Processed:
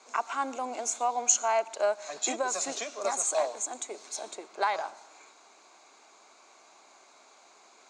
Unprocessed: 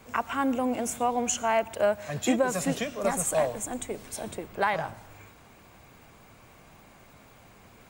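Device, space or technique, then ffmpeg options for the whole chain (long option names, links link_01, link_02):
phone speaker on a table: -af "highpass=frequency=390:width=0.5412,highpass=frequency=390:width=1.3066,equalizer=frequency=500:width_type=q:width=4:gain=-9,equalizer=frequency=1800:width_type=q:width=4:gain=-8,equalizer=frequency=3000:width_type=q:width=4:gain=-7,equalizer=frequency=4200:width_type=q:width=4:gain=7,equalizer=frequency=6600:width_type=q:width=4:gain=9,lowpass=frequency=7700:width=0.5412,lowpass=frequency=7700:width=1.3066"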